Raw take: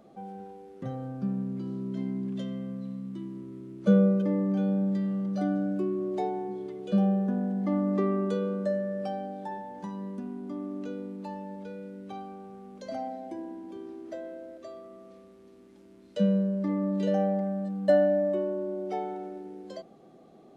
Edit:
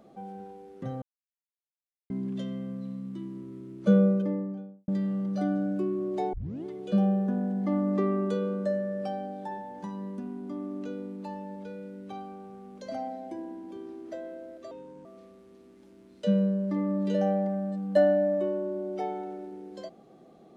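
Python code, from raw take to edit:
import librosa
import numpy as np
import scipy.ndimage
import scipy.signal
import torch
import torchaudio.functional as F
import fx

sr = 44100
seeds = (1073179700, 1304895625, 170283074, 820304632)

y = fx.studio_fade_out(x, sr, start_s=4.02, length_s=0.86)
y = fx.edit(y, sr, fx.silence(start_s=1.02, length_s=1.08),
    fx.tape_start(start_s=6.33, length_s=0.32),
    fx.speed_span(start_s=14.71, length_s=0.27, speed=0.79), tone=tone)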